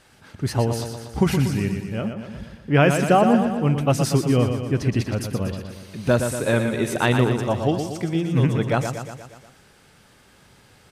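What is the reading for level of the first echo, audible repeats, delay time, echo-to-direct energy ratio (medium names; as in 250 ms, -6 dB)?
-7.0 dB, 6, 119 ms, -5.0 dB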